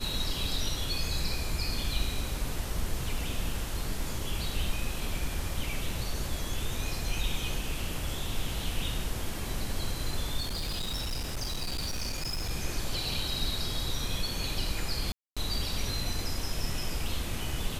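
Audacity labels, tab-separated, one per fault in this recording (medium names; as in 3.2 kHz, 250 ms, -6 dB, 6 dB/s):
10.400000	12.510000	clipped -29 dBFS
15.120000	15.370000	dropout 246 ms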